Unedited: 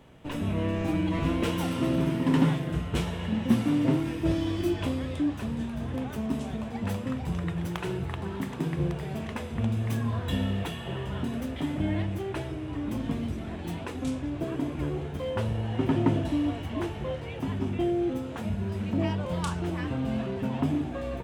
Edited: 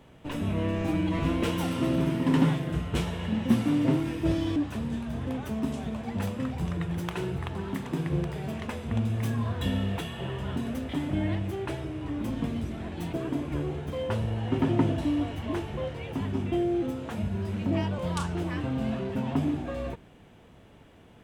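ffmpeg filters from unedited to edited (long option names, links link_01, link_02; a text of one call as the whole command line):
ffmpeg -i in.wav -filter_complex "[0:a]asplit=3[link_01][link_02][link_03];[link_01]atrim=end=4.562[link_04];[link_02]atrim=start=5.228:end=13.802[link_05];[link_03]atrim=start=14.398[link_06];[link_04][link_05]acrossfade=duration=0.004:curve1=hsin:curve2=hsin[link_07];[link_07][link_06]acrossfade=duration=0.004:curve1=hsin:curve2=hsin" out.wav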